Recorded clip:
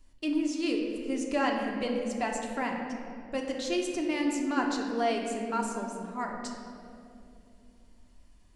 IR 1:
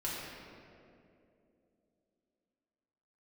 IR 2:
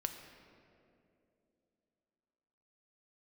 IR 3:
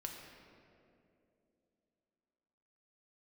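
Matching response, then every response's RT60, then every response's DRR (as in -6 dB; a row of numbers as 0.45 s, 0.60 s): 3; 2.7 s, 2.8 s, 2.8 s; -8.0 dB, 5.0 dB, 0.5 dB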